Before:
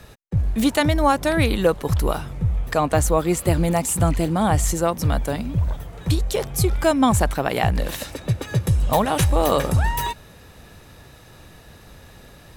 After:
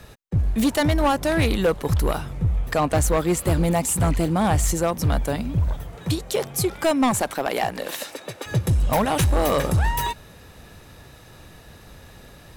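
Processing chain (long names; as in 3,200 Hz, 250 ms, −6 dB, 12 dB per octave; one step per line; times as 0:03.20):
0:05.95–0:08.45: high-pass filter 110 Hz → 440 Hz 12 dB per octave
hard clipping −14.5 dBFS, distortion −14 dB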